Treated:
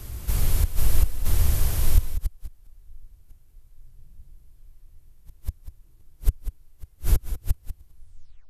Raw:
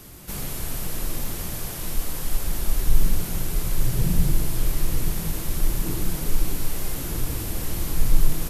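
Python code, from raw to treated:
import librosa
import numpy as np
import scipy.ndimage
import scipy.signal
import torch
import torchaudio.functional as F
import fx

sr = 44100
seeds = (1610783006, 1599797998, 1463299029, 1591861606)

y = fx.tape_stop_end(x, sr, length_s=0.55)
y = y + 10.0 ** (-14.0 / 20.0) * np.pad(y, (int(129 * sr / 1000.0), 0))[:len(y)]
y = fx.gate_flip(y, sr, shuts_db=-16.0, range_db=-39)
y = fx.low_shelf_res(y, sr, hz=120.0, db=12.0, q=1.5)
y = fx.echo_multitap(y, sr, ms=(194, 198), db=(-12.0, -19.5))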